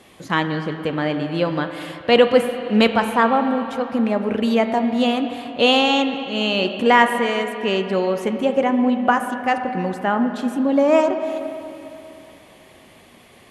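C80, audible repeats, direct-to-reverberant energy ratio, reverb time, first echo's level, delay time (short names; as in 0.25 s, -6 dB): 8.5 dB, none, 7.0 dB, 3.0 s, none, none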